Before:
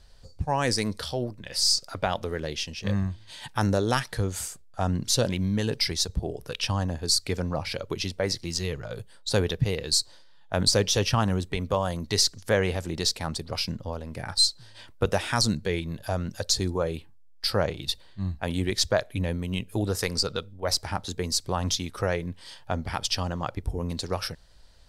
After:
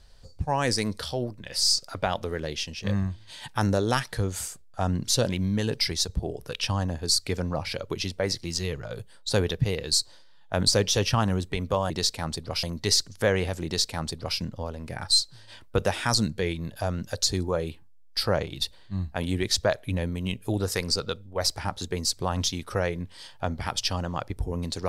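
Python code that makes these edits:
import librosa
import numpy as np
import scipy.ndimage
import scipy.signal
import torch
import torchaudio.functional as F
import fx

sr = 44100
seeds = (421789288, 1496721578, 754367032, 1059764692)

y = fx.edit(x, sr, fx.duplicate(start_s=12.92, length_s=0.73, to_s=11.9), tone=tone)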